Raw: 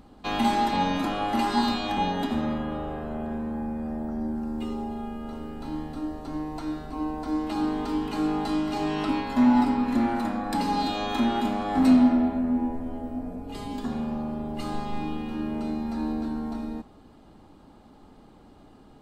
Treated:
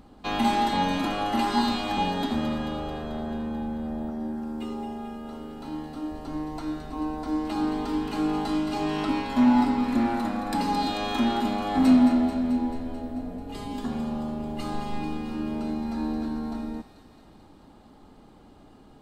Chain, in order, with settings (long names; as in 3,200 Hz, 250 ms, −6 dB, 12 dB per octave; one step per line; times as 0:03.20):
0:04.10–0:06.12: low-shelf EQ 110 Hz −10 dB
delay with a high-pass on its return 219 ms, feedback 68%, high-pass 2,100 Hz, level −8 dB